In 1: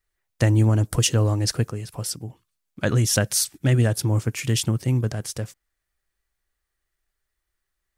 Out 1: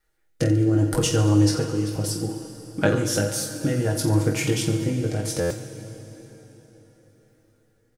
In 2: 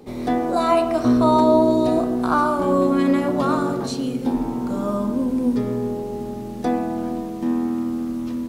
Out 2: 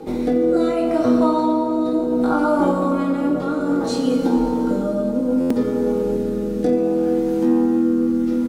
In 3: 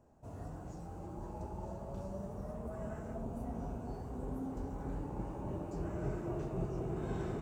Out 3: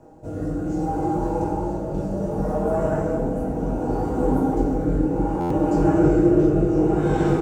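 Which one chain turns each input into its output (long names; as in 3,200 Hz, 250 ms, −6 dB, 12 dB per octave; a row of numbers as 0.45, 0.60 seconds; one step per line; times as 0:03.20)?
comb filter 6.4 ms, depth 41%
downward compressor 4 to 1, threshold −29 dBFS
rotating-speaker cabinet horn 0.65 Hz
hollow resonant body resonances 320/490/810/1,400 Hz, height 9 dB, ringing for 30 ms
on a send: reverse bouncing-ball delay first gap 20 ms, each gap 1.4×, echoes 5
on the sum: dense smooth reverb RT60 4.4 s, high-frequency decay 0.8×, DRR 8 dB
buffer that repeats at 0:05.40, samples 512, times 8
normalise the peak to −6 dBFS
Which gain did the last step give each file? +5.5, +6.0, +14.0 decibels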